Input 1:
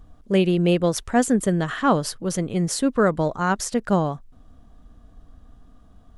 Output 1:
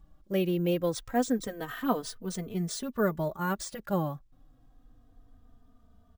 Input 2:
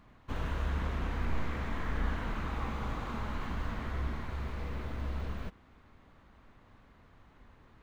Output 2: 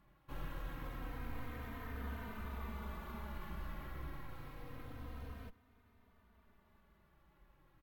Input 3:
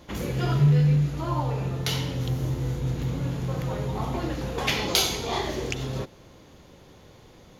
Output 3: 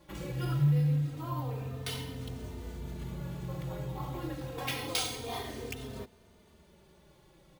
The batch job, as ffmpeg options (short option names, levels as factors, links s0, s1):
-filter_complex "[0:a]acrusher=samples=3:mix=1:aa=0.000001,asplit=2[s0][s1];[s1]adelay=3.1,afreqshift=-0.27[s2];[s0][s2]amix=inputs=2:normalize=1,volume=0.473"